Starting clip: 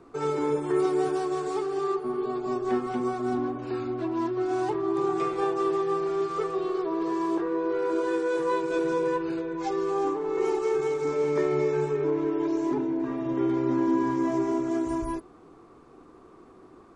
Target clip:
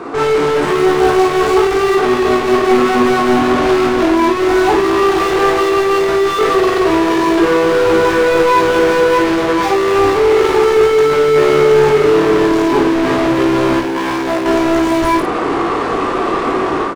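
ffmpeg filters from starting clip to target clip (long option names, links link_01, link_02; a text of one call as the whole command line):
ffmpeg -i in.wav -filter_complex "[0:a]dynaudnorm=framelen=430:gausssize=3:maxgain=16dB,asettb=1/sr,asplit=3[link_01][link_02][link_03];[link_01]atrim=end=13.794[link_04];[link_02]atrim=start=13.79:end=14.46,asetpts=PTS-STARTPTS,afade=type=in:duration=0.004:curve=qsin,afade=type=out:start_time=0.666:duration=0.004:curve=qsin,asoftclip=type=hard:threshold=-28.5dB[link_05];[link_03]atrim=start=14.456[link_06];[link_04][link_05]acrossfade=duration=0.004:curve1=hsin:curve2=qsin[link_07];[link_07][link_06]acrossfade=duration=0.004:curve1=qsin:curve2=hsin,asplit=2[link_08][link_09];[link_09]highpass=frequency=720:poles=1,volume=38dB,asoftclip=type=tanh:threshold=-8.5dB[link_10];[link_08][link_10]amix=inputs=2:normalize=0,lowpass=frequency=2200:poles=1,volume=-6dB,aecho=1:1:21|53:0.596|0.562,volume=-1dB" out.wav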